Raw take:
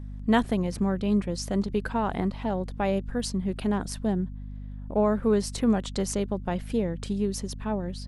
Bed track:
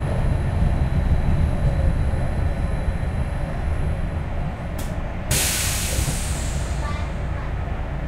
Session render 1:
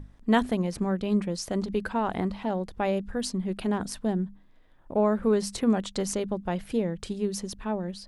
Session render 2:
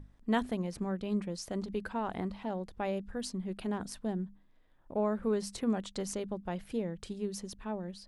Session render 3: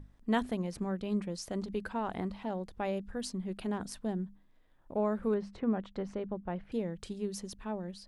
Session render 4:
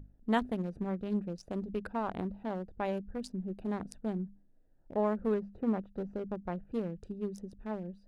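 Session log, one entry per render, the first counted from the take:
hum notches 50/100/150/200/250 Hz
trim -7.5 dB
5.34–6.72 s: low-pass 2 kHz
local Wiener filter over 41 samples; peaking EQ 900 Hz +2.5 dB 1.6 oct

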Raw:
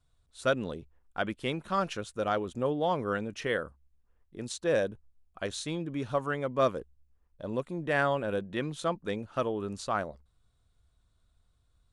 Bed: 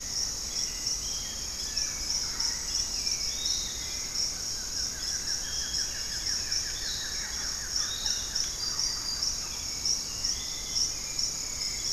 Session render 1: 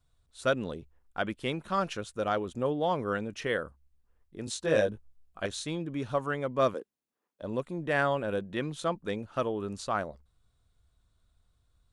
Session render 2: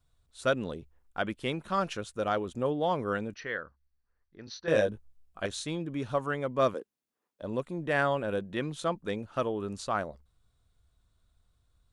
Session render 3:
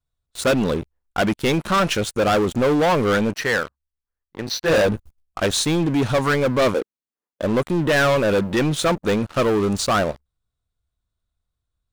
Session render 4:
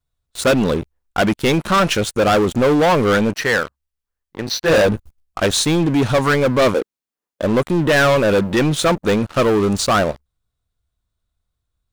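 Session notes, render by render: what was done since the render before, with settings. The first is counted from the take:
4.45–5.46 s: doubling 19 ms -2 dB; 6.74–7.42 s: high-pass 230 Hz 24 dB/octave
3.34–4.68 s: rippled Chebyshev low-pass 6.1 kHz, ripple 9 dB
waveshaping leveller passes 5
trim +3.5 dB

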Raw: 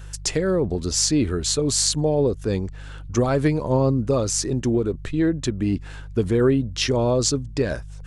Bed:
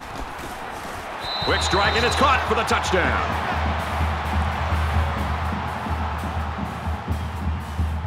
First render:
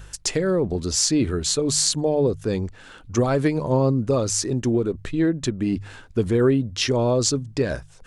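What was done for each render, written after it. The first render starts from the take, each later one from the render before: de-hum 50 Hz, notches 3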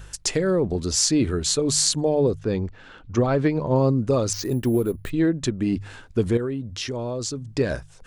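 2.39–3.76 s: distance through air 130 m; 4.33–5.10 s: careless resampling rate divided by 4×, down filtered, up hold; 6.37–7.50 s: compression 2:1, threshold -32 dBFS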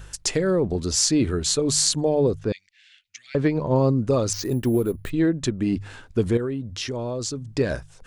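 2.52–3.35 s: elliptic high-pass 2 kHz, stop band 50 dB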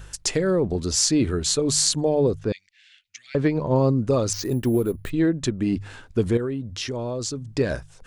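no audible change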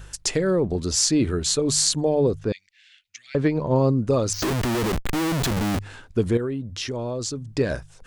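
4.42–5.79 s: Schmitt trigger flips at -38.5 dBFS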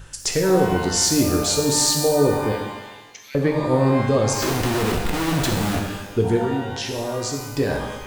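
pitch-shifted reverb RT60 1.1 s, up +12 st, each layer -8 dB, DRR 1.5 dB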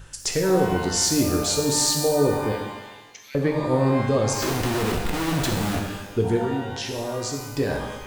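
trim -2.5 dB

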